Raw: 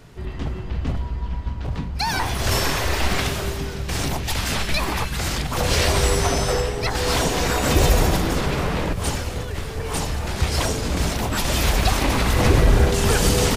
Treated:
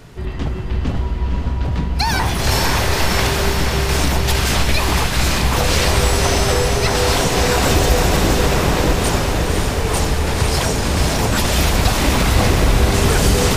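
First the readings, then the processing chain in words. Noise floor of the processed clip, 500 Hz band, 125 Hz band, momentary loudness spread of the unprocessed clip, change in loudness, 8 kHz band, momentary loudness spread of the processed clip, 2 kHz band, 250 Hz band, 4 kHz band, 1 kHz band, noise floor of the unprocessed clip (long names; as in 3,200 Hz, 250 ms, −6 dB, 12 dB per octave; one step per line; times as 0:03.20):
−22 dBFS, +5.0 dB, +5.0 dB, 11 LU, +5.0 dB, +5.0 dB, 7 LU, +5.5 dB, +5.0 dB, +5.0 dB, +5.5 dB, −30 dBFS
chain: downward compressor 2.5 to 1, threshold −20 dBFS, peak gain reduction 7 dB
on a send: feedback delay with all-pass diffusion 530 ms, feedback 68%, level −4 dB
on the sum: level +5.5 dB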